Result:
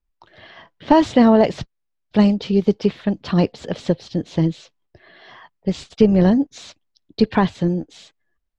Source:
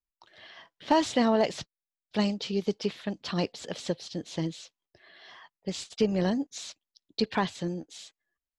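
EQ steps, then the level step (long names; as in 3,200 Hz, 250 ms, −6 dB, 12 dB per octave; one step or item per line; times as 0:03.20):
RIAA equalisation playback
low-shelf EQ 220 Hz −6 dB
+8.5 dB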